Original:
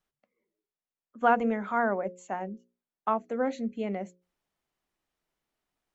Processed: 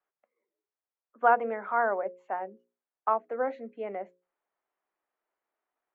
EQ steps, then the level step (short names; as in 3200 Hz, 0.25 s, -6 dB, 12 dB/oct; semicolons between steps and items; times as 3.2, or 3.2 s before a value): air absorption 190 m; three-band isolator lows -19 dB, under 330 Hz, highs -18 dB, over 2200 Hz; low shelf 260 Hz -9 dB; +3.5 dB